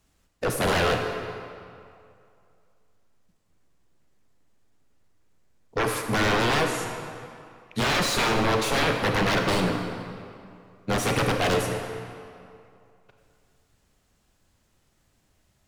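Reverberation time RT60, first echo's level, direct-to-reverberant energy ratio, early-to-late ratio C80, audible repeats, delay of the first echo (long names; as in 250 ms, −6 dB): 2.5 s, no echo audible, 3.5 dB, 5.5 dB, no echo audible, no echo audible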